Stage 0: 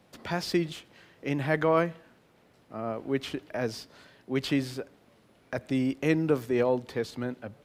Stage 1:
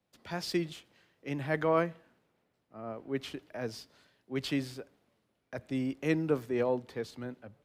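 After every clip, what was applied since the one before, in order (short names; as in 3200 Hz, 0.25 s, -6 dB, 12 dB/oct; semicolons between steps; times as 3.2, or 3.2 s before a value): three-band expander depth 40%; gain -5.5 dB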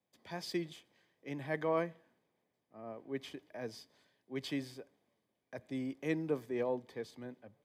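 notch comb 1400 Hz; gain -5 dB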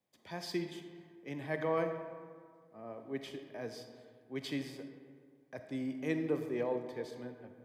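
digital reverb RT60 2 s, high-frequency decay 0.45×, pre-delay 5 ms, DRR 6.5 dB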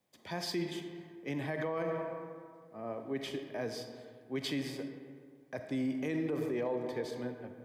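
limiter -32.5 dBFS, peak gain reduction 11 dB; gain +6 dB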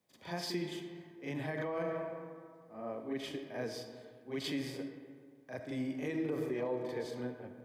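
reverse echo 40 ms -6.5 dB; gain -2.5 dB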